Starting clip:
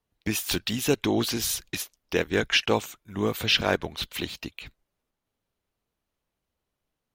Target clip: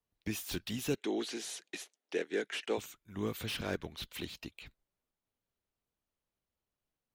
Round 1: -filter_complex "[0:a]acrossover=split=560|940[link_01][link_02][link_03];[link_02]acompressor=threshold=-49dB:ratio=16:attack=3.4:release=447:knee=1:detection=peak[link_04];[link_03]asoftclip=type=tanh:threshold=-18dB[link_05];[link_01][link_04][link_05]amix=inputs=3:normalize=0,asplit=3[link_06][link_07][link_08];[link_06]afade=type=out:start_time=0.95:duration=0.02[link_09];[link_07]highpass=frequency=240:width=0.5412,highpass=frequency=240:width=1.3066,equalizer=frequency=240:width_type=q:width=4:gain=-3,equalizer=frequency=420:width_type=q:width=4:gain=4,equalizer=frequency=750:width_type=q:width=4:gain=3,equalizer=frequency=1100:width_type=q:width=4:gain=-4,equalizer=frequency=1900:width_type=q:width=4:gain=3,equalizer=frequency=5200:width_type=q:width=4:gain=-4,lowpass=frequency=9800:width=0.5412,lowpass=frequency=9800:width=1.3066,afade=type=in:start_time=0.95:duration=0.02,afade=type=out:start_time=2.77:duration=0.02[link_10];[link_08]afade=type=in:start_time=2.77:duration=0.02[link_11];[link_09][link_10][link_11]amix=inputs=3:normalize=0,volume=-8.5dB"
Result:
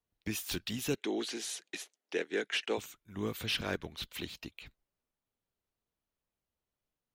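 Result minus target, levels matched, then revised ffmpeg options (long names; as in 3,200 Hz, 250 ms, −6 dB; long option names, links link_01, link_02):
soft clipping: distortion −8 dB
-filter_complex "[0:a]acrossover=split=560|940[link_01][link_02][link_03];[link_02]acompressor=threshold=-49dB:ratio=16:attack=3.4:release=447:knee=1:detection=peak[link_04];[link_03]asoftclip=type=tanh:threshold=-27.5dB[link_05];[link_01][link_04][link_05]amix=inputs=3:normalize=0,asplit=3[link_06][link_07][link_08];[link_06]afade=type=out:start_time=0.95:duration=0.02[link_09];[link_07]highpass=frequency=240:width=0.5412,highpass=frequency=240:width=1.3066,equalizer=frequency=240:width_type=q:width=4:gain=-3,equalizer=frequency=420:width_type=q:width=4:gain=4,equalizer=frequency=750:width_type=q:width=4:gain=3,equalizer=frequency=1100:width_type=q:width=4:gain=-4,equalizer=frequency=1900:width_type=q:width=4:gain=3,equalizer=frequency=5200:width_type=q:width=4:gain=-4,lowpass=frequency=9800:width=0.5412,lowpass=frequency=9800:width=1.3066,afade=type=in:start_time=0.95:duration=0.02,afade=type=out:start_time=2.77:duration=0.02[link_10];[link_08]afade=type=in:start_time=2.77:duration=0.02[link_11];[link_09][link_10][link_11]amix=inputs=3:normalize=0,volume=-8.5dB"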